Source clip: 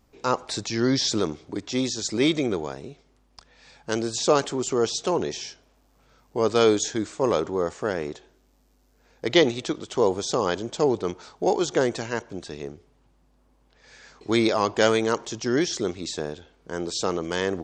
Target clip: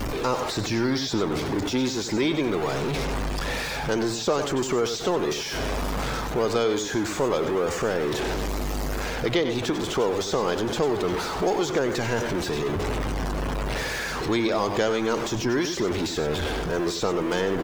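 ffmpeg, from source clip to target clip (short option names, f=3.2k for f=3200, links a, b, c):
-filter_complex "[0:a]aeval=exprs='val(0)+0.5*0.075*sgn(val(0))':c=same,areverse,acompressor=mode=upward:threshold=-24dB:ratio=2.5,areverse,afftdn=nr=14:nf=-37,asplit=2[a][b];[b]adelay=93.29,volume=-10dB,highshelf=f=4k:g=-2.1[c];[a][c]amix=inputs=2:normalize=0,acrossover=split=830|2900[d][e][f];[d]acompressor=threshold=-22dB:ratio=4[g];[e]acompressor=threshold=-30dB:ratio=4[h];[f]acompressor=threshold=-36dB:ratio=4[i];[g][h][i]amix=inputs=3:normalize=0"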